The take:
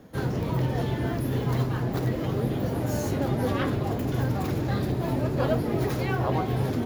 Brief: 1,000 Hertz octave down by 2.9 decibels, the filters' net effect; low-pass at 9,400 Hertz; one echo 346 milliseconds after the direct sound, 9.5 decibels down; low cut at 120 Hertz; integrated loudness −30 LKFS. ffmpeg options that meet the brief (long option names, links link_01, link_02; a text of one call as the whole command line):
ffmpeg -i in.wav -af "highpass=120,lowpass=9400,equalizer=frequency=1000:width_type=o:gain=-4,aecho=1:1:346:0.335,volume=-1.5dB" out.wav